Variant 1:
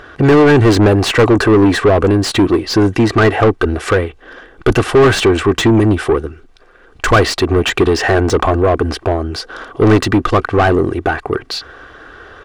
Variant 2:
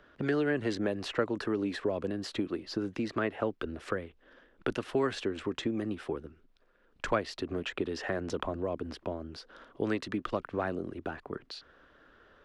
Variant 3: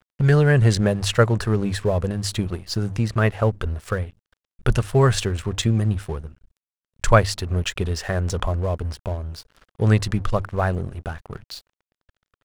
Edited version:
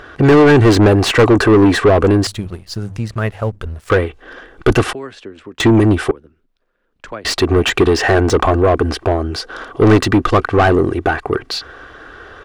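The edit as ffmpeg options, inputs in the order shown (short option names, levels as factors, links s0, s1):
-filter_complex "[1:a]asplit=2[s0][s1];[0:a]asplit=4[s2][s3][s4][s5];[s2]atrim=end=2.272[s6];[2:a]atrim=start=2.268:end=3.902[s7];[s3]atrim=start=3.898:end=4.932[s8];[s0]atrim=start=4.928:end=5.602[s9];[s4]atrim=start=5.598:end=6.112[s10];[s1]atrim=start=6.108:end=7.252[s11];[s5]atrim=start=7.248[s12];[s6][s7]acrossfade=d=0.004:c1=hsin:c2=hsin[s13];[s13][s8]acrossfade=d=0.004:c1=hsin:c2=hsin[s14];[s14][s9]acrossfade=d=0.004:c1=hsin:c2=hsin[s15];[s15][s10]acrossfade=d=0.004:c1=hsin:c2=hsin[s16];[s16][s11]acrossfade=d=0.004:c1=hsin:c2=hsin[s17];[s17][s12]acrossfade=d=0.004:c1=hsin:c2=hsin"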